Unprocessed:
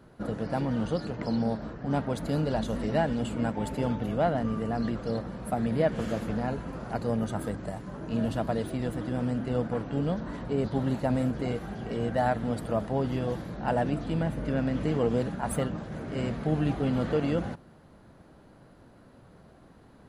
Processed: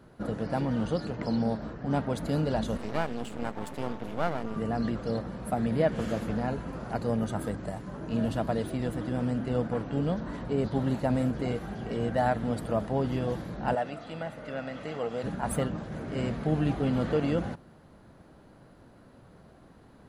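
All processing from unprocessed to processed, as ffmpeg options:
-filter_complex "[0:a]asettb=1/sr,asplit=3[s0][s1][s2];[s0]atrim=end=2.774[s3];[s1]atrim=start=2.77:end=4.56,asetpts=PTS-STARTPTS,afade=t=in:d=0.004:c=qsin,afade=t=out:st=1.786:d=0.004:c=qsin,highpass=f=200:p=1,aeval=exprs='max(val(0),0)':c=same[s4];[s2]atrim=start=4.556[s5];[s3][s4]acrossfade=d=0.004:c1=hsin:c2=qsin[s6];[s6][s5]acrossfade=d=0.004:c1=qsin:c2=hsin,asettb=1/sr,asplit=3[s7][s8][s9];[s7]atrim=end=13.754[s10];[s8]atrim=start=13.75:end=15.24,asetpts=PTS-STARTPTS,afade=t=in:d=0.004:c=qsin,afade=t=out:st=1.486:d=0.004:c=qsin,highpass=f=730:p=1,highshelf=f=7500:g=-10,aecho=1:1:1.5:0.34,atrim=end_sample=65709[s11];[s9]atrim=start=15.236[s12];[s10][s11]acrossfade=d=0.004:c1=hsin:c2=qsin[s13];[s13][s12]acrossfade=d=0.004:c1=qsin:c2=hsin"

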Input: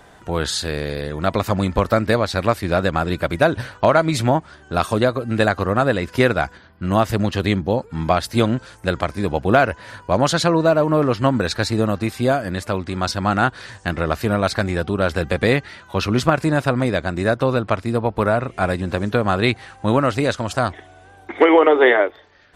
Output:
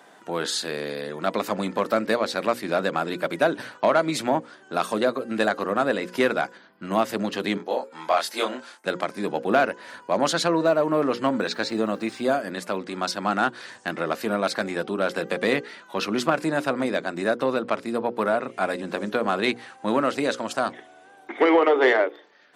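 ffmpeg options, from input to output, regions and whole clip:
-filter_complex "[0:a]asettb=1/sr,asplit=3[s0][s1][s2];[s0]atrim=end=7.574[s3];[s1]atrim=start=7.57:end=8.86,asetpts=PTS-STARTPTS,afade=t=in:d=0.004:c=qsin,afade=t=out:st=1.286:d=0.004:c=qsin,agate=range=0.0224:threshold=0.00891:ratio=3:release=100:detection=peak,highpass=510,asplit=2[s4][s5];[s5]adelay=24,volume=0.75[s6];[s4][s6]amix=inputs=2:normalize=0,atrim=end_sample=56889[s7];[s2]atrim=start=8.856[s8];[s3][s7]acrossfade=d=0.004:c1=hsin:c2=qsin[s9];[s9][s8]acrossfade=d=0.004:c1=qsin:c2=hsin,asettb=1/sr,asplit=3[s10][s11][s12];[s10]atrim=end=11.414[s13];[s11]atrim=start=11.41:end=12.24,asetpts=PTS-STARTPTS,afade=t=in:d=0.004:c=qsin,afade=t=out:st=0.826:d=0.004:c=qsin,acrossover=split=6100[s14][s15];[s15]acompressor=threshold=0.00708:ratio=4:attack=1:release=60[s16];[s14][s16]amix=inputs=2:normalize=0,lowpass=f=9300:w=0.5412,lowpass=f=9300:w=1.3066,acrusher=bits=8:mix=0:aa=0.5[s17];[s12]atrim=start=12.236[s18];[s13][s17]acrossfade=d=0.004:c1=hsin:c2=qsin[s19];[s19][s18]acrossfade=d=0.004:c1=qsin:c2=hsin,bandreject=f=60:t=h:w=6,bandreject=f=120:t=h:w=6,bandreject=f=180:t=h:w=6,bandreject=f=240:t=h:w=6,bandreject=f=300:t=h:w=6,bandreject=f=360:t=h:w=6,bandreject=f=420:t=h:w=6,bandreject=f=480:t=h:w=6,bandreject=f=540:t=h:w=6,acontrast=29,highpass=f=200:w=0.5412,highpass=f=200:w=1.3066,volume=0.376"

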